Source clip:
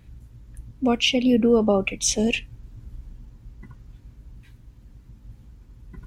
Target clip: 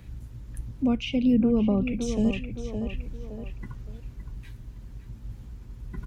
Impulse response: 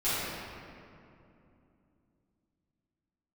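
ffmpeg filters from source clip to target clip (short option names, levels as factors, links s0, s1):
-filter_complex "[0:a]acrossover=split=2800[s0][s1];[s1]acompressor=threshold=0.0178:ratio=4:attack=1:release=60[s2];[s0][s2]amix=inputs=2:normalize=0,asplit=2[s3][s4];[s4]adelay=565,lowpass=f=2100:p=1,volume=0.316,asplit=2[s5][s6];[s6]adelay=565,lowpass=f=2100:p=1,volume=0.28,asplit=2[s7][s8];[s8]adelay=565,lowpass=f=2100:p=1,volume=0.28[s9];[s5][s7][s9]amix=inputs=3:normalize=0[s10];[s3][s10]amix=inputs=2:normalize=0,acrossover=split=220[s11][s12];[s12]acompressor=threshold=0.00794:ratio=2.5[s13];[s11][s13]amix=inputs=2:normalize=0,volume=1.68"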